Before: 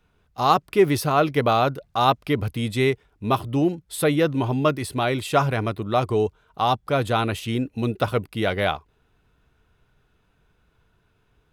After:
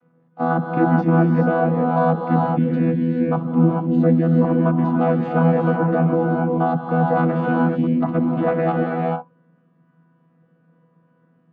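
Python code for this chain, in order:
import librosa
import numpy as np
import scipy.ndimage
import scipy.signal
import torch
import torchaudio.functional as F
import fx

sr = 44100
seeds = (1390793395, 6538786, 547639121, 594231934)

p1 = fx.chord_vocoder(x, sr, chord='bare fifth', root=52)
p2 = scipy.signal.sosfilt(scipy.signal.butter(2, 1500.0, 'lowpass', fs=sr, output='sos'), p1)
p3 = fx.over_compress(p2, sr, threshold_db=-26.0, ratio=-0.5)
p4 = p2 + (p3 * librosa.db_to_amplitude(-1.0))
y = fx.rev_gated(p4, sr, seeds[0], gate_ms=460, shape='rising', drr_db=-1.0)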